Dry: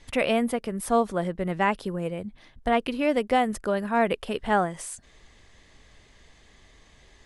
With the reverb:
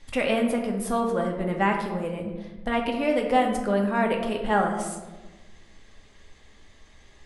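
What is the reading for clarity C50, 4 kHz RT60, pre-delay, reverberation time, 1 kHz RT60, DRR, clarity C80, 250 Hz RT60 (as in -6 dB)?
5.0 dB, 0.60 s, 4 ms, 1.2 s, 1.1 s, 1.0 dB, 7.5 dB, 1.7 s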